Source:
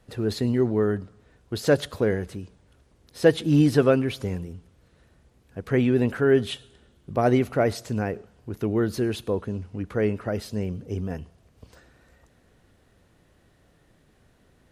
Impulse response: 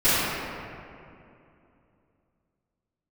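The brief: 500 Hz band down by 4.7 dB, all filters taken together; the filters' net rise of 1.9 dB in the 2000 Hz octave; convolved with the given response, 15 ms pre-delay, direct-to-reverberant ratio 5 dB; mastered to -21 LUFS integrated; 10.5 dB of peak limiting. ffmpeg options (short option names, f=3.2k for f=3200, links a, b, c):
-filter_complex "[0:a]equalizer=f=500:t=o:g=-6,equalizer=f=2k:t=o:g=3,alimiter=limit=-19dB:level=0:latency=1,asplit=2[a][b];[1:a]atrim=start_sample=2205,adelay=15[c];[b][c]afir=irnorm=-1:irlink=0,volume=-25.5dB[d];[a][d]amix=inputs=2:normalize=0,volume=9dB"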